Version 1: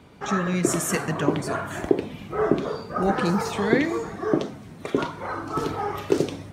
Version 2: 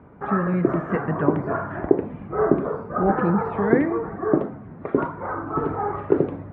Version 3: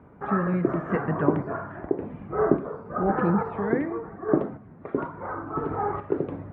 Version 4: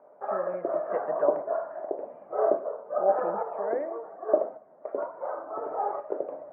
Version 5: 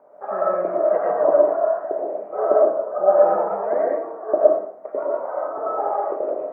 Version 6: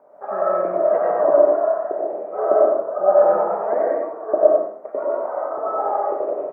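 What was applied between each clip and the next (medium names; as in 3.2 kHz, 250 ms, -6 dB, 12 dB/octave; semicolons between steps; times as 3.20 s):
low-pass 1.6 kHz 24 dB/octave; trim +2.5 dB
random-step tremolo 3.5 Hz; trim -1.5 dB
ladder band-pass 650 Hz, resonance 75%; trim +8 dB
reverberation RT60 0.45 s, pre-delay 70 ms, DRR -3 dB; trim +2.5 dB
delay 93 ms -5 dB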